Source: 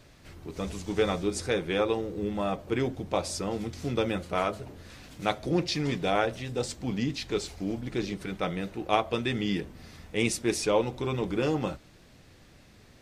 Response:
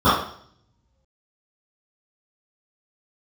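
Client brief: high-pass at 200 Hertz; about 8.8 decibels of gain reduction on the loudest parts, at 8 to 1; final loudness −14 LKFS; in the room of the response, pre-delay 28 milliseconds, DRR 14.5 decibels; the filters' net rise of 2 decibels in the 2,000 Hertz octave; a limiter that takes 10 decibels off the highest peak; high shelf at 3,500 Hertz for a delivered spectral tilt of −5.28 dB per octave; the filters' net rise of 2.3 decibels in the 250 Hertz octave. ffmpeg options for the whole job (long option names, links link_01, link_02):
-filter_complex "[0:a]highpass=200,equalizer=frequency=250:width_type=o:gain=5,equalizer=frequency=2000:width_type=o:gain=5,highshelf=frequency=3500:gain=-8,acompressor=threshold=-28dB:ratio=8,alimiter=level_in=0.5dB:limit=-24dB:level=0:latency=1,volume=-0.5dB,asplit=2[link_01][link_02];[1:a]atrim=start_sample=2205,adelay=28[link_03];[link_02][link_03]afir=irnorm=-1:irlink=0,volume=-40dB[link_04];[link_01][link_04]amix=inputs=2:normalize=0,volume=22.5dB"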